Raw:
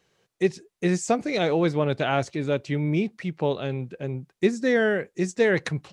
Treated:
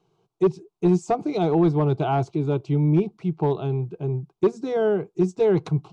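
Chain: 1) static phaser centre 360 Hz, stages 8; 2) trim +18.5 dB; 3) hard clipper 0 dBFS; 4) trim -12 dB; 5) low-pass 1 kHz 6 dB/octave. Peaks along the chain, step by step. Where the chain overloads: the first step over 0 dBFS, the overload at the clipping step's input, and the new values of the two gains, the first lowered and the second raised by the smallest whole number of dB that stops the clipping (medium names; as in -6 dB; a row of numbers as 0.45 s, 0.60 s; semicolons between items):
-10.5 dBFS, +8.0 dBFS, 0.0 dBFS, -12.0 dBFS, -12.0 dBFS; step 2, 8.0 dB; step 2 +10.5 dB, step 4 -4 dB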